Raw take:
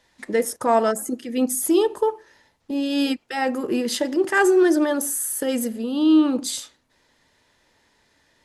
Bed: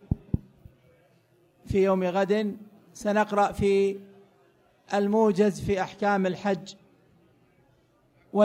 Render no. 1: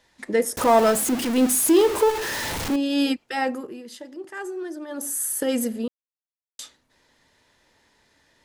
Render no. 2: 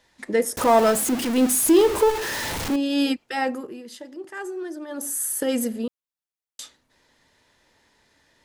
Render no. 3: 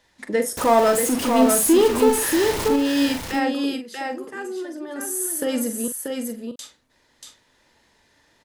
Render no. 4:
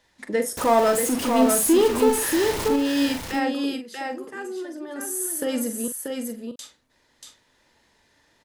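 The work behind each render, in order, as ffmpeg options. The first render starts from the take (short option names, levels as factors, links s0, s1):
-filter_complex "[0:a]asettb=1/sr,asplit=3[s0][s1][s2];[s0]atrim=end=0.574[s3];[s1]atrim=start=0.57:end=2.76,asetpts=PTS-STARTPTS,afade=t=in:d=0.004:c=qsin,afade=t=out:st=2.186:d=0.004:c=qsin,aeval=exprs='val(0)+0.5*0.075*sgn(val(0))':c=same[s4];[s2]atrim=start=2.756[s5];[s3][s4]acrossfade=d=0.004:c1=hsin:c2=qsin[s6];[s6][s5]acrossfade=d=0.004:c1=qsin:c2=hsin,asplit=5[s7][s8][s9][s10][s11];[s7]atrim=end=3.74,asetpts=PTS-STARTPTS,afade=t=out:st=3.38:d=0.36:silence=0.158489[s12];[s8]atrim=start=3.74:end=4.87,asetpts=PTS-STARTPTS,volume=0.158[s13];[s9]atrim=start=4.87:end=5.88,asetpts=PTS-STARTPTS,afade=t=in:d=0.36:silence=0.158489,afade=t=out:st=1.006:d=0.004:c=hsin[s14];[s10]atrim=start=5.88:end=6.59,asetpts=PTS-STARTPTS,volume=0[s15];[s11]atrim=start=6.59,asetpts=PTS-STARTPTS,afade=t=in:d=0.004:c=hsin[s16];[s12][s13][s14][s15][s16]concat=n=5:v=0:a=1"
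-filter_complex "[0:a]asettb=1/sr,asplit=3[s0][s1][s2];[s0]atrim=end=1.624[s3];[s1]atrim=start=1.62:end=2.16,asetpts=PTS-STARTPTS,afade=t=in:d=0.004:c=qsin,afade=t=out:st=0.536:d=0.004:c=qsin,lowshelf=f=130:g=8[s4];[s2]atrim=start=2.156[s5];[s3][s4]acrossfade=d=0.004:c1=hsin:c2=qsin[s6];[s6][s5]acrossfade=d=0.004:c1=qsin:c2=hsin"
-filter_complex "[0:a]asplit=2[s0][s1];[s1]adelay=43,volume=0.355[s2];[s0][s2]amix=inputs=2:normalize=0,aecho=1:1:635:0.596"
-af "volume=0.794"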